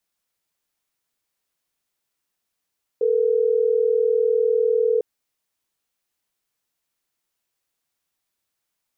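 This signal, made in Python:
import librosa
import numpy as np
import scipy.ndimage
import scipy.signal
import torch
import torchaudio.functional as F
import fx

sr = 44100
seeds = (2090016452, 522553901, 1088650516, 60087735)

y = fx.call_progress(sr, length_s=3.12, kind='ringback tone', level_db=-19.0)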